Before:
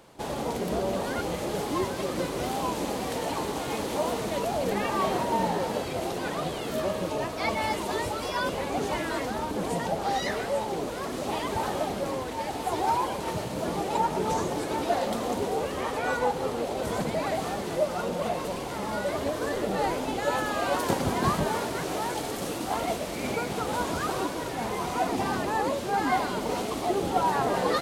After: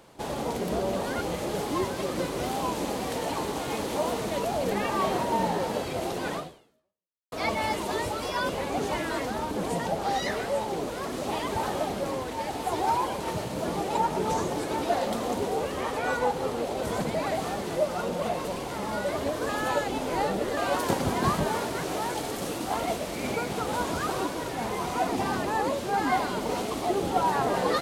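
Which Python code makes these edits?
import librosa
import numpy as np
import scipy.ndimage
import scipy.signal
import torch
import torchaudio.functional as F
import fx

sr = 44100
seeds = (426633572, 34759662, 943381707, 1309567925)

y = fx.edit(x, sr, fx.fade_out_span(start_s=6.36, length_s=0.96, curve='exp'),
    fx.reverse_span(start_s=19.49, length_s=1.08), tone=tone)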